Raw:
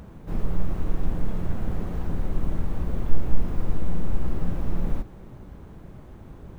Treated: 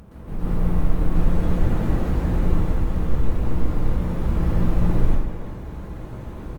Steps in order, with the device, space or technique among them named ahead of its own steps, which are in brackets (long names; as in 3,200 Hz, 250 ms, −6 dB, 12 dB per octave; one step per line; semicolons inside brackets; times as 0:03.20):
speakerphone in a meeting room (convolution reverb RT60 0.85 s, pre-delay 113 ms, DRR −6.5 dB; far-end echo of a speakerphone 330 ms, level −10 dB; automatic gain control gain up to 5 dB; level −2 dB; Opus 32 kbit/s 48,000 Hz)